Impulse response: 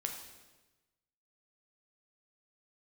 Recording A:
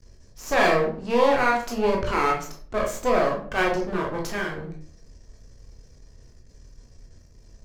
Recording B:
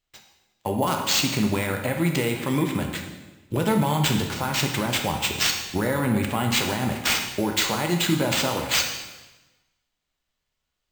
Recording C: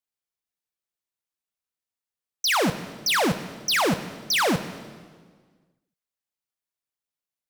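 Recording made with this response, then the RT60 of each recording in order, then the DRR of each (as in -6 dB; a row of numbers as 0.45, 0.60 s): B; 0.50, 1.2, 1.6 s; -1.0, 2.5, 10.5 dB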